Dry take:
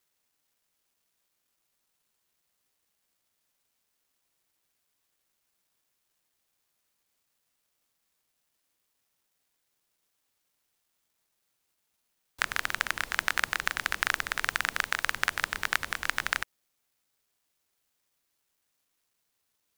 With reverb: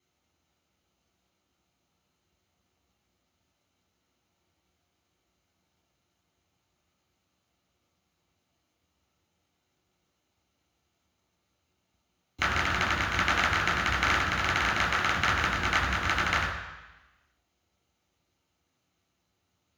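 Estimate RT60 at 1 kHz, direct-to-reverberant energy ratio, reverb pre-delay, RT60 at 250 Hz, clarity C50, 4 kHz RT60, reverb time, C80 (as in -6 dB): 1.1 s, -6.0 dB, 3 ms, 1.1 s, 3.5 dB, 1.1 s, 1.1 s, 5.5 dB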